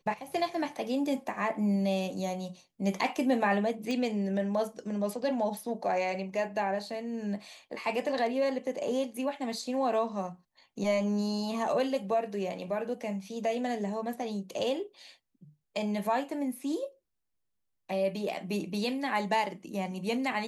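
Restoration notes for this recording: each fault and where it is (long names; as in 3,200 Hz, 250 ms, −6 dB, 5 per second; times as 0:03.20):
0:03.91: click −23 dBFS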